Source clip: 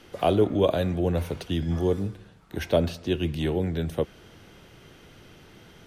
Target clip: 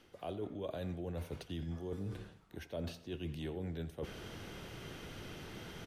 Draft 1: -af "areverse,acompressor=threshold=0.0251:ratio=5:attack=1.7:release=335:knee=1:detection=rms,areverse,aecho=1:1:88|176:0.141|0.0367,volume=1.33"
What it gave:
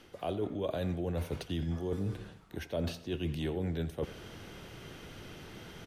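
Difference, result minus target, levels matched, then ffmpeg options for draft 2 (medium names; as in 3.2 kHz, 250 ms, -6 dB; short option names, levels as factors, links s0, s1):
compression: peak gain reduction -7 dB
-af "areverse,acompressor=threshold=0.00944:ratio=5:attack=1.7:release=335:knee=1:detection=rms,areverse,aecho=1:1:88|176:0.141|0.0367,volume=1.33"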